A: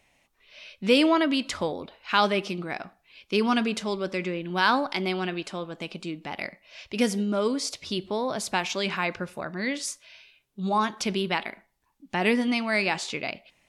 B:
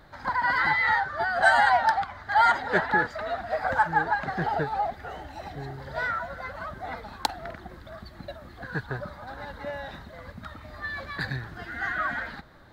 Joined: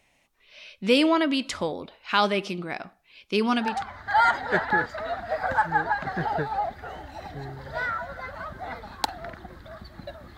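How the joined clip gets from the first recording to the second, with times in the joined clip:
A
0:03.71: continue with B from 0:01.92, crossfade 0.36 s linear

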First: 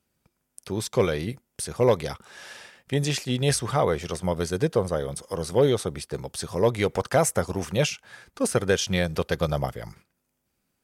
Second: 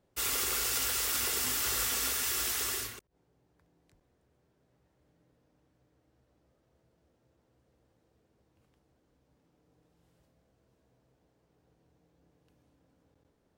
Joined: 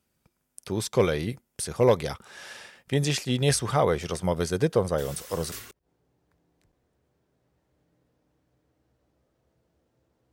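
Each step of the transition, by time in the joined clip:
first
0:04.98: mix in second from 0:02.26 0.54 s −12.5 dB
0:05.52: continue with second from 0:02.80

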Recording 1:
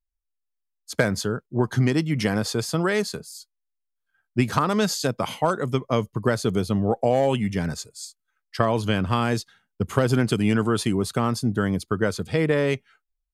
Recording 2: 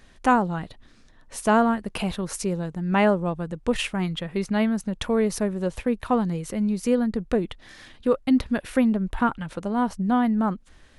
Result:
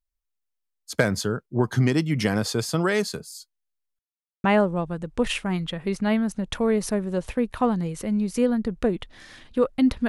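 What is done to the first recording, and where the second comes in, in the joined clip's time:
recording 1
0:03.99–0:04.44: silence
0:04.44: continue with recording 2 from 0:02.93

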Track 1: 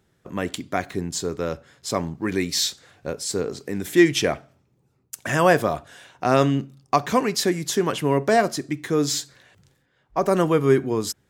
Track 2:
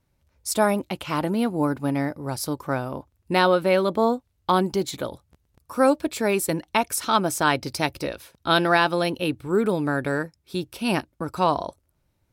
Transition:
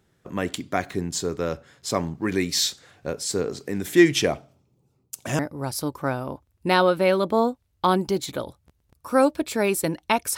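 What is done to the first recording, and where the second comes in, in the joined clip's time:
track 1
0:04.26–0:05.39: parametric band 1,700 Hz −10.5 dB 0.74 octaves
0:05.39: continue with track 2 from 0:02.04

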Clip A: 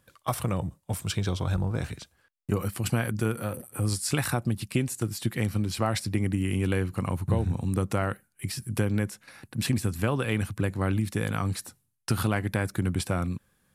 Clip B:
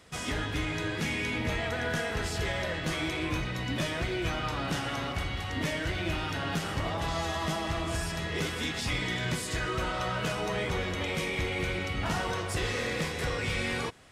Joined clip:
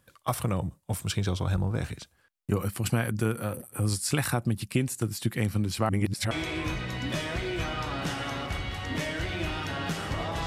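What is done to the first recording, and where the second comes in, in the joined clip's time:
clip A
0:05.89–0:06.31: reverse
0:06.31: continue with clip B from 0:02.97

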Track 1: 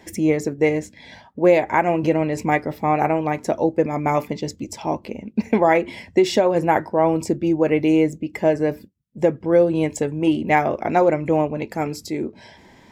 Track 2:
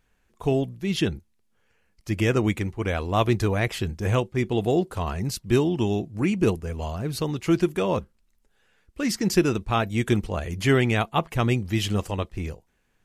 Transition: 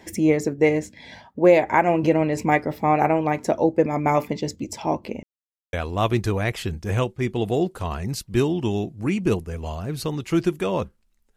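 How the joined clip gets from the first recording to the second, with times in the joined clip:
track 1
0:05.23–0:05.73: silence
0:05.73: continue with track 2 from 0:02.89

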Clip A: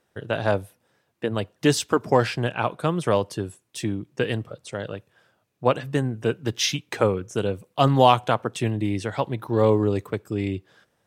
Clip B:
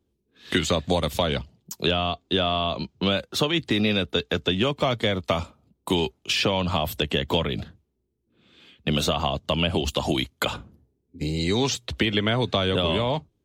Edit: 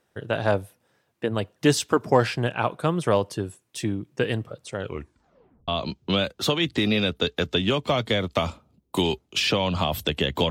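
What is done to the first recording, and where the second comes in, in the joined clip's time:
clip A
0:04.76: tape stop 0.92 s
0:05.68: continue with clip B from 0:02.61

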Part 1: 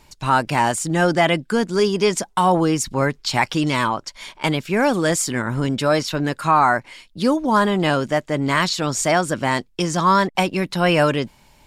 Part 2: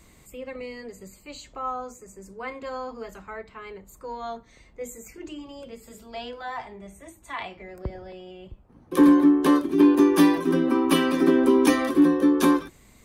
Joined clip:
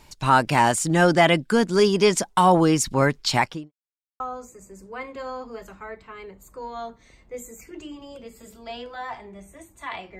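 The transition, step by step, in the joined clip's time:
part 1
0:03.30–0:03.72: fade out and dull
0:03.72–0:04.20: silence
0:04.20: continue with part 2 from 0:01.67

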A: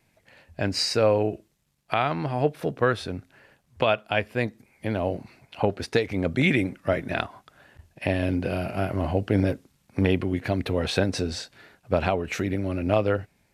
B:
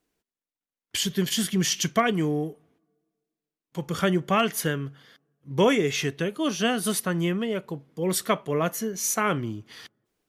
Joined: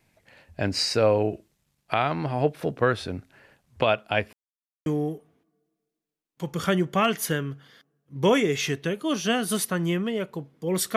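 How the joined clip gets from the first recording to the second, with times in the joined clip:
A
0:04.33–0:04.86: silence
0:04.86: continue with B from 0:02.21

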